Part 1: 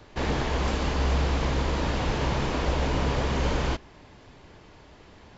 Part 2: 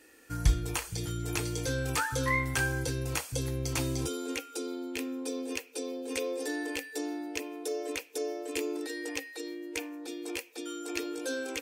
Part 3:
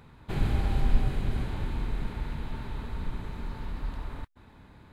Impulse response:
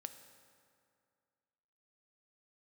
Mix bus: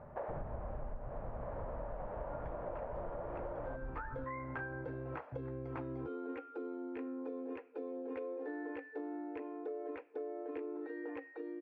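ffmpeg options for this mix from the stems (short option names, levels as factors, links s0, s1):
-filter_complex "[0:a]highpass=f=590:t=q:w=4.9,volume=0.376[s0];[1:a]highpass=f=240:p=1,adelay=2000,volume=0.841[s1];[2:a]volume=0.708[s2];[s0][s1][s2]amix=inputs=3:normalize=0,lowpass=f=1500:w=0.5412,lowpass=f=1500:w=1.3066,acompressor=threshold=0.0126:ratio=16"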